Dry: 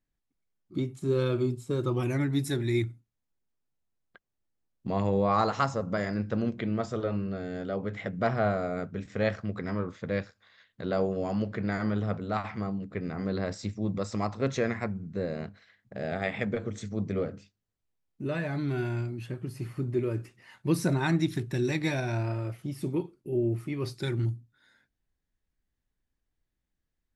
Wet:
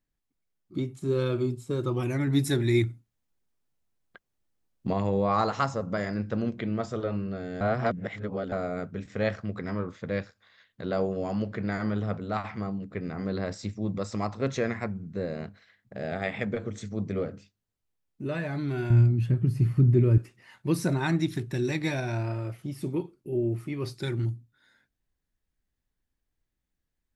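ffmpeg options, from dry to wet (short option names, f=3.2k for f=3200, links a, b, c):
-filter_complex "[0:a]asettb=1/sr,asplit=3[a][b][c];[a]atrim=end=18.904[d];[b]atrim=start=18.9:end=20.18,asetpts=PTS-STARTPTS,afade=t=in:d=0.004:c=qsin,afade=t=out:st=1.276:d=0.004:c=qsin,bass=f=250:g=15,treble=f=4k:g=-2[e];[c]atrim=start=20.176[f];[d][e]acrossfade=d=0.004:c1=hsin:c2=qsin[g];[g][f]acrossfade=d=0.004:c1=qsin:c2=hsin,asplit=5[h][i][j][k][l];[h]atrim=end=2.272[m];[i]atrim=start=2.268:end=4.932,asetpts=PTS-STARTPTS,volume=4dB[n];[j]atrim=start=4.928:end=7.612[o];[k]atrim=start=7.608:end=8.522,asetpts=PTS-STARTPTS,areverse[p];[l]atrim=start=8.518[q];[m][n]acrossfade=d=0.004:c1=hsin:c2=hsin[r];[r][o]acrossfade=d=0.004:c1=hsin:c2=hsin[s];[s][p]acrossfade=d=0.004:c1=hsin:c2=hsin[t];[t][q]acrossfade=d=0.004:c1=hsin:c2=hsin"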